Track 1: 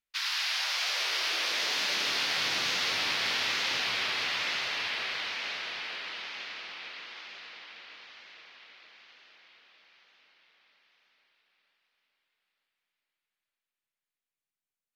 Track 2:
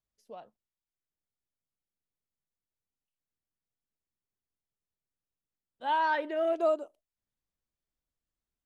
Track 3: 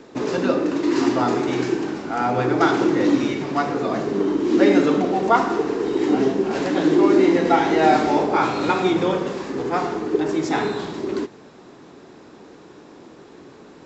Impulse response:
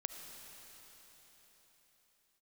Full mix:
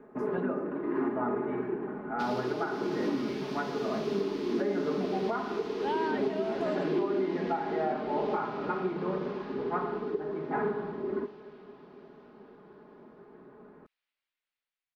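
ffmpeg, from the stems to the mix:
-filter_complex "[0:a]acompressor=threshold=-34dB:ratio=6,adelay=2050,volume=-11.5dB[link_01];[1:a]acompressor=threshold=-29dB:ratio=6,volume=0dB,asplit=2[link_02][link_03];[link_03]volume=-16dB[link_04];[2:a]lowpass=frequency=1700:width=0.5412,lowpass=frequency=1700:width=1.3066,aecho=1:1:4.8:0.66,volume=-11.5dB,asplit=2[link_05][link_06];[link_06]volume=-10.5dB[link_07];[3:a]atrim=start_sample=2205[link_08];[link_07][link_08]afir=irnorm=-1:irlink=0[link_09];[link_04]aecho=0:1:375:1[link_10];[link_01][link_02][link_05][link_09][link_10]amix=inputs=5:normalize=0,alimiter=limit=-20.5dB:level=0:latency=1:release=456"

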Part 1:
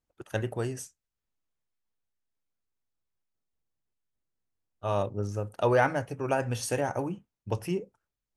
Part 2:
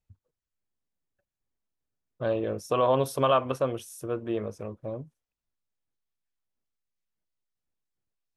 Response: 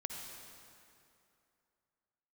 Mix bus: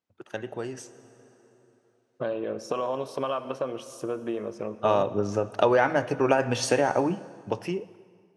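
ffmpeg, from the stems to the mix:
-filter_complex "[0:a]acompressor=threshold=-29dB:ratio=6,volume=-1dB,asplit=2[link_01][link_02];[link_02]volume=-10.5dB[link_03];[1:a]bandreject=frequency=3500:width=15,acompressor=threshold=-34dB:ratio=8,volume=-5.5dB,asplit=2[link_04][link_05];[link_05]volume=-7.5dB[link_06];[2:a]atrim=start_sample=2205[link_07];[link_03][link_06]amix=inputs=2:normalize=0[link_08];[link_08][link_07]afir=irnorm=-1:irlink=0[link_09];[link_01][link_04][link_09]amix=inputs=3:normalize=0,dynaudnorm=framelen=230:gausssize=11:maxgain=11dB,highpass=200,lowpass=5400"

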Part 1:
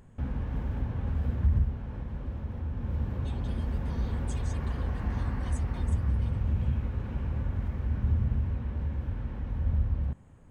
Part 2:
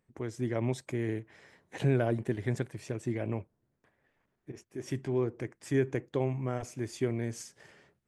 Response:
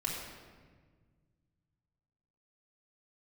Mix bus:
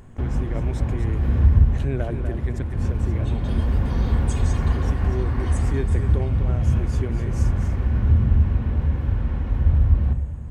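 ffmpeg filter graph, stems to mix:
-filter_complex "[0:a]acontrast=38,volume=0.5dB,asplit=2[link_01][link_02];[link_02]volume=-7dB[link_03];[1:a]volume=-1dB,asplit=3[link_04][link_05][link_06];[link_05]volume=-8dB[link_07];[link_06]apad=whole_len=463122[link_08];[link_01][link_08]sidechaincompress=threshold=-35dB:ratio=8:attack=8.2:release=244[link_09];[2:a]atrim=start_sample=2205[link_10];[link_03][link_10]afir=irnorm=-1:irlink=0[link_11];[link_07]aecho=0:1:245:1[link_12];[link_09][link_04][link_11][link_12]amix=inputs=4:normalize=0"

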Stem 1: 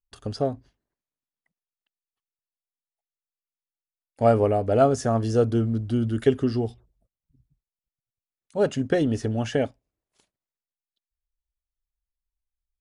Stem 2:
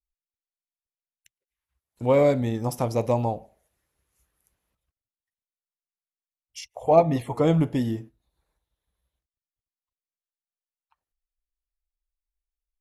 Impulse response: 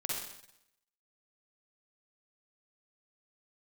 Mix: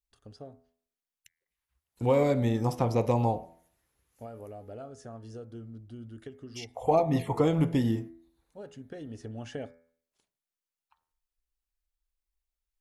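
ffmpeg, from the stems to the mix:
-filter_complex "[0:a]acompressor=threshold=-21dB:ratio=6,volume=-10.5dB,afade=type=in:start_time=8.87:duration=0.79:silence=0.421697[link_01];[1:a]bandreject=frequency=610:width=12,acrossover=split=1200|4600[link_02][link_03][link_04];[link_02]acompressor=threshold=-21dB:ratio=4[link_05];[link_03]acompressor=threshold=-41dB:ratio=4[link_06];[link_04]acompressor=threshold=-53dB:ratio=4[link_07];[link_05][link_06][link_07]amix=inputs=3:normalize=0,volume=1dB[link_08];[link_01][link_08]amix=inputs=2:normalize=0,bandreject=frequency=83.08:width_type=h:width=4,bandreject=frequency=166.16:width_type=h:width=4,bandreject=frequency=249.24:width_type=h:width=4,bandreject=frequency=332.32:width_type=h:width=4,bandreject=frequency=415.4:width_type=h:width=4,bandreject=frequency=498.48:width_type=h:width=4,bandreject=frequency=581.56:width_type=h:width=4,bandreject=frequency=664.64:width_type=h:width=4,bandreject=frequency=747.72:width_type=h:width=4,bandreject=frequency=830.8:width_type=h:width=4,bandreject=frequency=913.88:width_type=h:width=4,bandreject=frequency=996.96:width_type=h:width=4,bandreject=frequency=1080.04:width_type=h:width=4,bandreject=frequency=1163.12:width_type=h:width=4,bandreject=frequency=1246.2:width_type=h:width=4,bandreject=frequency=1329.28:width_type=h:width=4,bandreject=frequency=1412.36:width_type=h:width=4,bandreject=frequency=1495.44:width_type=h:width=4,bandreject=frequency=1578.52:width_type=h:width=4,bandreject=frequency=1661.6:width_type=h:width=4,bandreject=frequency=1744.68:width_type=h:width=4,bandreject=frequency=1827.76:width_type=h:width=4,bandreject=frequency=1910.84:width_type=h:width=4,bandreject=frequency=1993.92:width_type=h:width=4,bandreject=frequency=2077:width_type=h:width=4,bandreject=frequency=2160.08:width_type=h:width=4,bandreject=frequency=2243.16:width_type=h:width=4,bandreject=frequency=2326.24:width_type=h:width=4"

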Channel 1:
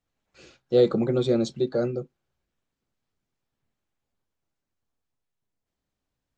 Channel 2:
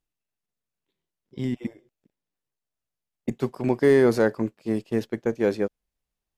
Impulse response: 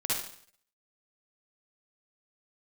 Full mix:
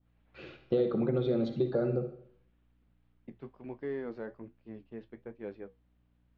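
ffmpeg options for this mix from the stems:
-filter_complex "[0:a]acompressor=threshold=-30dB:ratio=8,volume=2.5dB,asplit=2[link_01][link_02];[link_02]volume=-13dB[link_03];[1:a]aeval=exprs='val(0)+0.00355*(sin(2*PI*60*n/s)+sin(2*PI*2*60*n/s)/2+sin(2*PI*3*60*n/s)/3+sin(2*PI*4*60*n/s)/4+sin(2*PI*5*60*n/s)/5)':channel_layout=same,flanger=delay=9.6:depth=4.1:regen=-60:speed=1.3:shape=sinusoidal,volume=-15.5dB[link_04];[2:a]atrim=start_sample=2205[link_05];[link_03][link_05]afir=irnorm=-1:irlink=0[link_06];[link_01][link_04][link_06]amix=inputs=3:normalize=0,lowpass=frequency=3300:width=0.5412,lowpass=frequency=3300:width=1.3066,adynamicequalizer=threshold=0.00158:dfrequency=2300:dqfactor=1.2:tfrequency=2300:tqfactor=1.2:attack=5:release=100:ratio=0.375:range=2:mode=cutabove:tftype=bell"

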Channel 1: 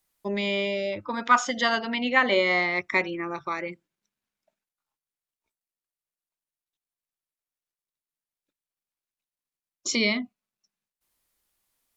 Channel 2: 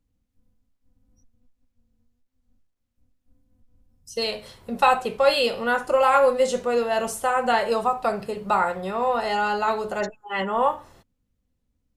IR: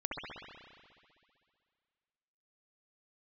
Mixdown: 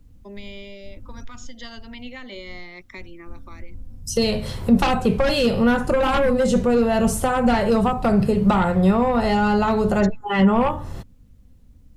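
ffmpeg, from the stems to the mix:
-filter_complex "[0:a]acrossover=split=350|3000[link_01][link_02][link_03];[link_02]acompressor=threshold=-34dB:ratio=6[link_04];[link_01][link_04][link_03]amix=inputs=3:normalize=0,volume=-8.5dB[link_05];[1:a]lowshelf=frequency=260:gain=11,aeval=exprs='0.596*sin(PI/2*2.51*val(0)/0.596)':channel_layout=same,volume=2dB,asplit=2[link_06][link_07];[link_07]apad=whole_len=527447[link_08];[link_05][link_08]sidechaincompress=threshold=-31dB:ratio=8:attack=16:release=475[link_09];[link_09][link_06]amix=inputs=2:normalize=0,acrossover=split=240[link_10][link_11];[link_11]acompressor=threshold=-26dB:ratio=2.5[link_12];[link_10][link_12]amix=inputs=2:normalize=0"

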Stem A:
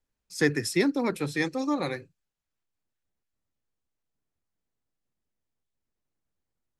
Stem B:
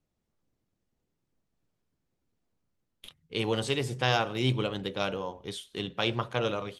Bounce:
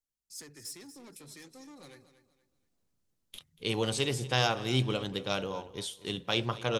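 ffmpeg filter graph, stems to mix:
ffmpeg -i stem1.wav -i stem2.wav -filter_complex "[0:a]acompressor=threshold=-29dB:ratio=4,asoftclip=type=tanh:threshold=-31.5dB,volume=-15.5dB,asplit=2[link_01][link_02];[link_02]volume=-13dB[link_03];[1:a]highshelf=frequency=5300:gain=-9,adelay=300,volume=-2dB,asplit=2[link_04][link_05];[link_05]volume=-18.5dB[link_06];[link_03][link_06]amix=inputs=2:normalize=0,aecho=0:1:237|474|711|948:1|0.31|0.0961|0.0298[link_07];[link_01][link_04][link_07]amix=inputs=3:normalize=0,bass=frequency=250:gain=1,treble=frequency=4000:gain=14" out.wav

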